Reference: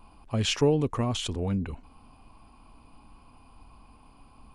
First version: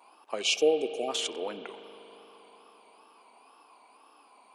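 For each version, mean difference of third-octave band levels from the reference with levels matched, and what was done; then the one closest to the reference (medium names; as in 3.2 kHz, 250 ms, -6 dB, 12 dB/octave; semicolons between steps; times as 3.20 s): 8.0 dB: wow and flutter 120 cents; spectral selection erased 0.41–1.08 s, 830–2200 Hz; high-pass 390 Hz 24 dB/octave; spring tank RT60 3.8 s, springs 39 ms, chirp 60 ms, DRR 11.5 dB; trim +1.5 dB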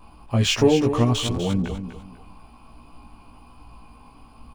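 3.5 dB: median filter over 3 samples; vibrato 1.2 Hz 13 cents; doubling 17 ms -2 dB; on a send: feedback delay 247 ms, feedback 27%, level -10 dB; on the sum: trim +4 dB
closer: second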